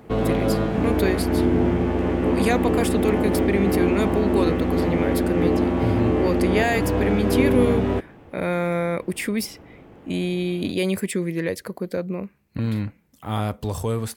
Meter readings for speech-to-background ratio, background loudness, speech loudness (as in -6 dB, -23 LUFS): -4.0 dB, -22.0 LUFS, -26.0 LUFS